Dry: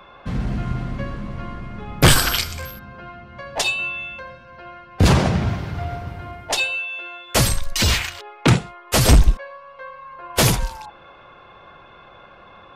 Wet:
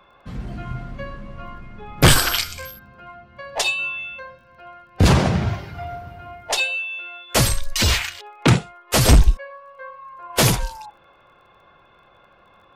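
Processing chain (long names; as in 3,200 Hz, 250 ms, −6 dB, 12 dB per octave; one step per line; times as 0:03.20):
surface crackle 21 per second −43 dBFS
noise reduction from a noise print of the clip's start 8 dB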